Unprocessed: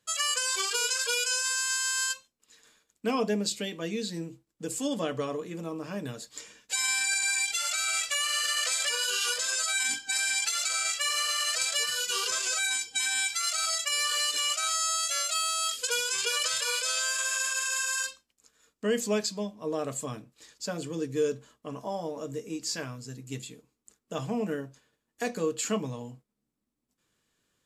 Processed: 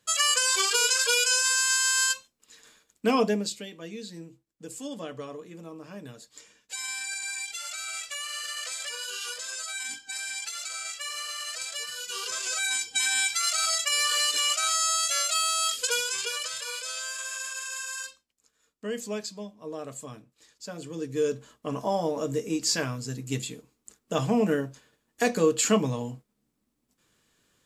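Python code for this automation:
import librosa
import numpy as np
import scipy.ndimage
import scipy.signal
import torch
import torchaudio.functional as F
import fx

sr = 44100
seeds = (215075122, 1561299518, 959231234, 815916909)

y = fx.gain(x, sr, db=fx.line((3.21, 5.0), (3.66, -6.5), (11.98, -6.5), (12.9, 3.0), (15.86, 3.0), (16.51, -5.5), (20.67, -5.5), (21.74, 7.0)))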